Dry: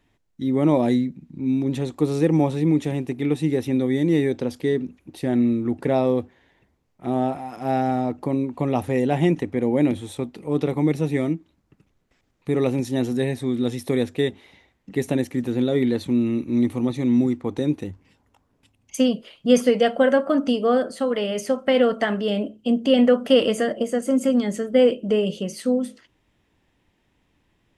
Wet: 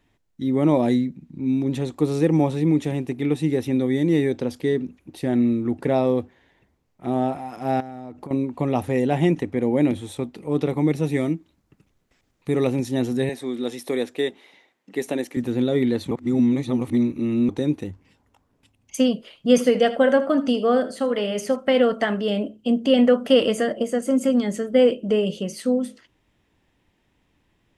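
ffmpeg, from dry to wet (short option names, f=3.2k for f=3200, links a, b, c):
-filter_complex "[0:a]asettb=1/sr,asplit=3[a][b][c];[a]atrim=end=7.804[d];[b]atrim=start=7.8:end=8.31,asetpts=PTS-STARTPTS,afade=t=in:d=0.004:c=qsin,afade=t=out:st=0.506:d=0.004:c=qsin,acompressor=threshold=-31dB:ratio=10:attack=3.2:release=140:knee=1:detection=peak[e];[c]atrim=start=8.306[f];[d][e]acrossfade=d=0.004:c1=hsin:c2=qsin[g];[g][f]acrossfade=d=0.004:c1=qsin:c2=hsin,asettb=1/sr,asplit=3[h][i][j];[h]atrim=end=11.034[k];[i]atrim=start=11.03:end=12.67,asetpts=PTS-STARTPTS,afade=t=in:d=0.004:c=qsin,afade=t=out:st=1.636:d=0.004:c=qsin,highshelf=f=4.4k:g=4.5[l];[j]atrim=start=12.666[m];[k][l]acrossfade=d=0.004:c1=hsin:c2=qsin[n];[n][m]acrossfade=d=0.004:c1=qsin:c2=hsin,asettb=1/sr,asplit=3[o][p][q];[o]atrim=end=13.294[r];[p]atrim=start=13.29:end=15.37,asetpts=PTS-STARTPTS,afade=t=in:d=0.004:c=qsin,afade=t=out:st=2.076:d=0.004:c=qsin,highpass=310[s];[q]atrim=start=15.366[t];[r][s]acrossfade=d=0.004:c1=hsin:c2=qsin[u];[u][t]acrossfade=d=0.004:c1=qsin:c2=hsin,asettb=1/sr,asplit=3[v][w][x];[v]atrim=end=19.504[y];[w]atrim=start=19.5:end=21.56,asetpts=PTS-STARTPTS,afade=t=in:d=0.004:c=qsin,afade=t=out:st=2.056:d=0.004:c=qsin,aecho=1:1:79:0.178,atrim=end_sample=90846[z];[x]atrim=start=21.556[aa];[y][z]acrossfade=d=0.004:c1=hsin:c2=qsin[ab];[ab][aa]acrossfade=d=0.004:c1=qsin:c2=hsin,asplit=3[ac][ad][ae];[ac]atrim=end=16.112[af];[ad]atrim=start=16.108:end=17.492,asetpts=PTS-STARTPTS,areverse[ag];[ae]atrim=start=17.488[ah];[af][ag]acrossfade=d=0.004:c1=hsin:c2=hsin[ai];[ai][ah]acrossfade=d=0.004:c1=hsin:c2=hsin"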